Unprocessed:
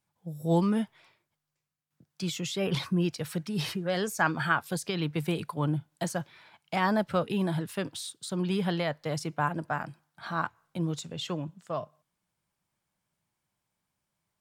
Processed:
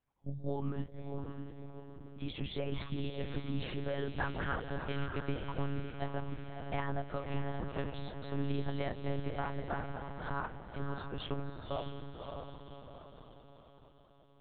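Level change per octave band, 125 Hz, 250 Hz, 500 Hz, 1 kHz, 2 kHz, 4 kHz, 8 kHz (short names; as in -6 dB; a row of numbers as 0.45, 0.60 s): -5.5 dB, -10.0 dB, -7.0 dB, -8.5 dB, -10.0 dB, -10.5 dB, under -40 dB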